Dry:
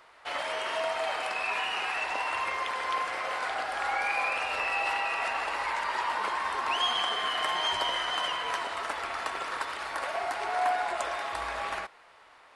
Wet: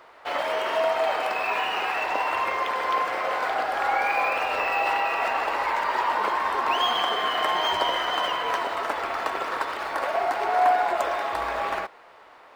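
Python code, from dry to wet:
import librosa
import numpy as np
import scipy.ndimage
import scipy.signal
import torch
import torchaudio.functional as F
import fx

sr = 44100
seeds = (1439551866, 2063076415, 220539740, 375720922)

y = fx.peak_eq(x, sr, hz=420.0, db=8.0, octaves=3.0)
y = np.interp(np.arange(len(y)), np.arange(len(y))[::2], y[::2])
y = y * librosa.db_to_amplitude(1.5)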